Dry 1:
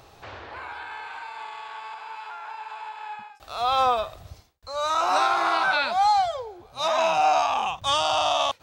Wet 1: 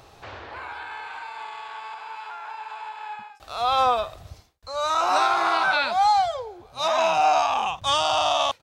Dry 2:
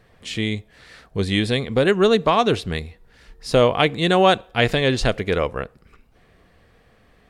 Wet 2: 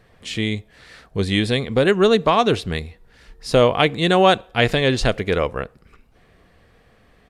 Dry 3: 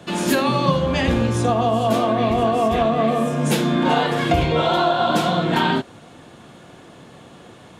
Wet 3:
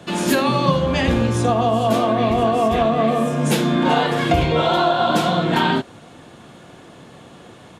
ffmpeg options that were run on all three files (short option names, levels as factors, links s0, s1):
-af "aresample=32000,aresample=44100,volume=1.12"